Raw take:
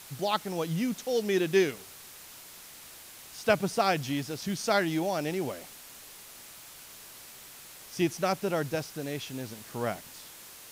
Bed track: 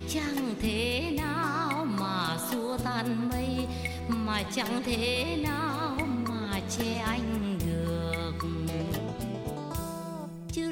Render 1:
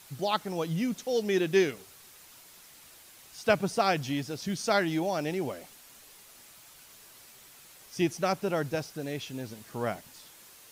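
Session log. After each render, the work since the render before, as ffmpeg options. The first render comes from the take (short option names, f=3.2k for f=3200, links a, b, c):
-af "afftdn=nr=6:nf=-49"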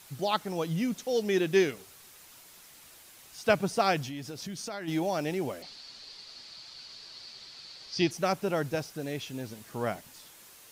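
-filter_complex "[0:a]asplit=3[a][b][c];[a]afade=t=out:st=4.05:d=0.02[d];[b]acompressor=threshold=-35dB:ratio=6:attack=3.2:release=140:knee=1:detection=peak,afade=t=in:st=4.05:d=0.02,afade=t=out:st=4.87:d=0.02[e];[c]afade=t=in:st=4.87:d=0.02[f];[d][e][f]amix=inputs=3:normalize=0,asettb=1/sr,asplit=3[g][h][i];[g]atrim=end=5.624[j];[h]atrim=start=5.62:end=8.11,asetpts=PTS-STARTPTS,afade=t=in:d=0.004:c=qsin,afade=t=out:st=2.486:d=0.004:c=qsin,lowpass=f=4.5k:t=q:w=8.7[k];[i]atrim=start=8.106[l];[j][k]acrossfade=d=0.004:c1=hsin:c2=qsin[m];[m][l]acrossfade=d=0.004:c1=qsin:c2=hsin"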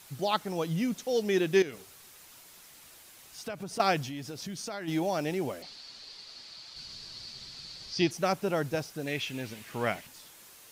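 -filter_complex "[0:a]asettb=1/sr,asplit=3[a][b][c];[a]atrim=end=1.624[d];[b]atrim=start=1.62:end=3.8,asetpts=PTS-STARTPTS,afade=t=in:d=0.004:c=qsin,afade=t=out:st=2.176:d=0.004:c=qsin,acompressor=threshold=-35dB:ratio=5:attack=3.2:release=140:knee=1:detection=peak[e];[c]atrim=start=3.796[f];[d][e]acrossfade=d=0.004:c1=hsin:c2=qsin[g];[g][f]acrossfade=d=0.004:c1=qsin:c2=hsin,asettb=1/sr,asplit=3[h][i][j];[h]atrim=end=6.764[k];[i]atrim=start=6.76:end=7.93,asetpts=PTS-STARTPTS,afade=t=in:d=0.004:c=qsin,afade=t=out:st=1.166:d=0.004:c=qsin,bass=f=250:g=13,treble=f=4k:g=4[l];[j]atrim=start=7.926[m];[k][l]acrossfade=d=0.004:c1=hsin:c2=qsin[n];[n][m]acrossfade=d=0.004:c1=qsin:c2=hsin,asettb=1/sr,asplit=3[o][p][q];[o]atrim=end=9.074[r];[p]atrim=start=9.07:end=10.07,asetpts=PTS-STARTPTS,afade=t=in:d=0.004:c=qsin,afade=t=out:st=0.996:d=0.004:c=qsin,equalizer=f=2.4k:w=1.2:g=10[s];[q]atrim=start=10.066[t];[r][s]acrossfade=d=0.004:c1=hsin:c2=qsin[u];[u][t]acrossfade=d=0.004:c1=qsin:c2=hsin"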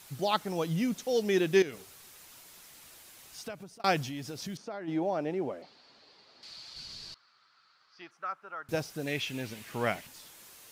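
-filter_complex "[0:a]asettb=1/sr,asplit=3[a][b][c];[a]atrim=end=4.574[d];[b]atrim=start=4.57:end=6.43,asetpts=PTS-STARTPTS,afade=t=in:d=0.004:c=qsin,afade=t=out:st=1.856:d=0.004:c=qsin,bandpass=f=490:t=q:w=0.51[e];[c]atrim=start=6.426[f];[d][e]acrossfade=d=0.004:c1=hsin:c2=qsin[g];[g][f]acrossfade=d=0.004:c1=qsin:c2=hsin,asettb=1/sr,asplit=3[h][i][j];[h]atrim=end=7.144[k];[i]atrim=start=7.14:end=8.69,asetpts=PTS-STARTPTS,afade=t=in:d=0.004:c=qsin,afade=t=out:st=1.546:d=0.004:c=qsin,bandpass=f=1.3k:t=q:w=5.1[l];[j]atrim=start=8.686[m];[k][l]acrossfade=d=0.004:c1=hsin:c2=qsin[n];[n][m]acrossfade=d=0.004:c1=qsin:c2=hsin,asplit=2[o][p];[o]atrim=end=3.84,asetpts=PTS-STARTPTS,afade=t=out:st=3.37:d=0.47[q];[p]atrim=start=3.84,asetpts=PTS-STARTPTS,afade=t=in:d=0.004:c=hsin[r];[q][r]concat=n=2:v=0:a=1"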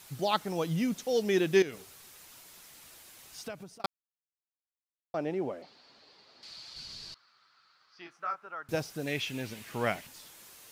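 -filter_complex "[0:a]asettb=1/sr,asplit=3[a][b][c];[a]atrim=end=8.034[d];[b]atrim=start=8.03:end=8.47,asetpts=PTS-STARTPTS,afade=t=in:d=0.004:c=qsin,afade=t=out:st=0.436:d=0.004:c=qsin,asplit=2[e][f];[f]adelay=23,volume=-4dB[g];[e][g]amix=inputs=2:normalize=0,atrim=end_sample=19404[h];[c]atrim=start=8.466[i];[d][h]acrossfade=d=0.004:c1=hsin:c2=qsin[j];[j][i]acrossfade=d=0.004:c1=qsin:c2=hsin,asplit=3[k][l][m];[k]atrim=end=3.86,asetpts=PTS-STARTPTS,afade=t=out:st=3.856:d=0.004:c=hsin[n];[l]atrim=start=3.86:end=5.14,asetpts=PTS-STARTPTS,volume=0[o];[m]atrim=start=5.14,asetpts=PTS-STARTPTS,afade=t=in:d=0.004:c=hsin[p];[n][o][p]concat=n=3:v=0:a=1"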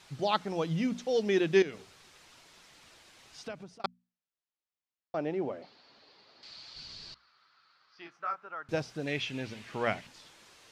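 -af "lowpass=5.2k,bandreject=f=60:t=h:w=6,bandreject=f=120:t=h:w=6,bandreject=f=180:t=h:w=6,bandreject=f=240:t=h:w=6"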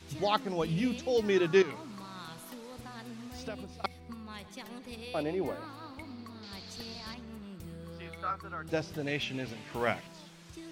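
-filter_complex "[1:a]volume=-15dB[a];[0:a][a]amix=inputs=2:normalize=0"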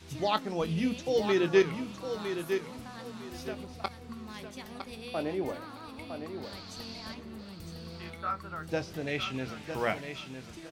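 -filter_complex "[0:a]asplit=2[a][b];[b]adelay=23,volume=-12dB[c];[a][c]amix=inputs=2:normalize=0,aecho=1:1:958|1916|2874:0.398|0.0955|0.0229"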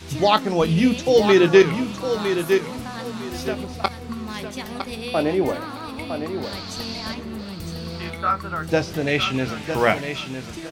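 -af "volume=12dB,alimiter=limit=-3dB:level=0:latency=1"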